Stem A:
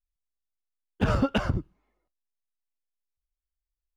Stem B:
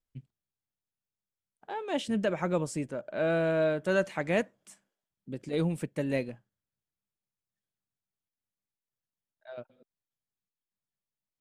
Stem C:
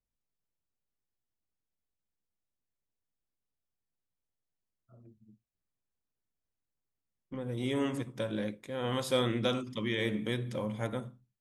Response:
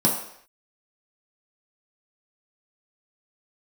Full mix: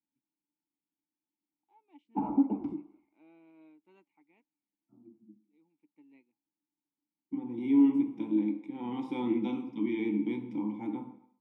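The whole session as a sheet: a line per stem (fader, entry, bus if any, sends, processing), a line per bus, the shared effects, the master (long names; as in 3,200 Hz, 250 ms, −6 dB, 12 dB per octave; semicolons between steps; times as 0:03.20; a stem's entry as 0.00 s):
+2.0 dB, 1.15 s, send −15.5 dB, low-shelf EQ 390 Hz −8.5 dB; auto-filter low-pass saw down 0.67 Hz 410–5,200 Hz
−13.0 dB, 0.00 s, no send, high-pass filter 370 Hz 6 dB per octave; expander for the loud parts 1.5 to 1, over −41 dBFS; automatic ducking −20 dB, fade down 0.95 s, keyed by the third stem
+2.0 dB, 0.00 s, send −10.5 dB, de-essing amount 90%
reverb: on, pre-delay 3 ms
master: formant filter u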